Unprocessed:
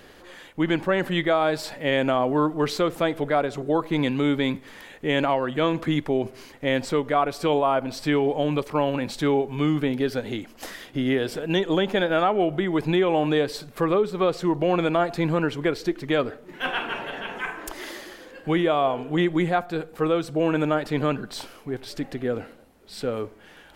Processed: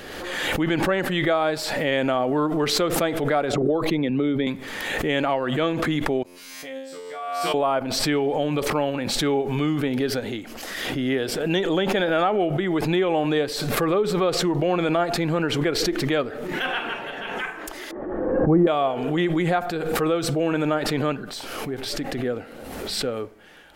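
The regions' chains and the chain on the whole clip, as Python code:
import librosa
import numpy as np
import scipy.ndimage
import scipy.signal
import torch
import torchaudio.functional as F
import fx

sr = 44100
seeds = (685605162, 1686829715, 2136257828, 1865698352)

y = fx.chain(x, sr, fx.envelope_sharpen(power=1.5),
    fx.band_squash(depth_pct=100), at=(3.53, 4.47))
y = fx.chain(y, sr, fx.tilt_eq(slope=2.5),
    fx.transient(attack_db=-1, sustain_db=-11),
    fx.comb_fb(f0_hz=89.0, decay_s=0.91, harmonics='all', damping=0.0, mix_pct=100), at=(6.23, 7.54))
y = fx.chain(y, sr, fx.lowpass(hz=1100.0, slope=24),
    fx.low_shelf(hz=430.0, db=9.0), at=(17.91, 18.67))
y = fx.low_shelf(y, sr, hz=210.0, db=-3.5)
y = fx.notch(y, sr, hz=1000.0, q=13.0)
y = fx.pre_swell(y, sr, db_per_s=32.0)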